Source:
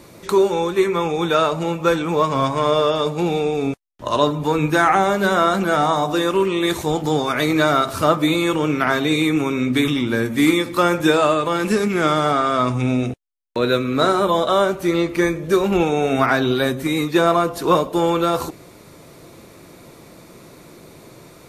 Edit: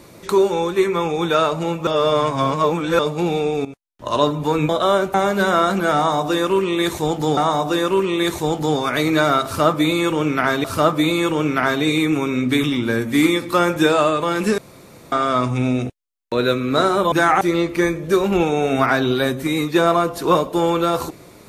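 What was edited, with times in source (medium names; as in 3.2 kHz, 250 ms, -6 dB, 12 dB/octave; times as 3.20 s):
1.87–2.99 s: reverse
3.65–4.18 s: fade in, from -16 dB
4.69–4.98 s: swap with 14.36–14.81 s
5.80–7.21 s: loop, 2 plays
7.88–9.07 s: loop, 2 plays
11.82–12.36 s: room tone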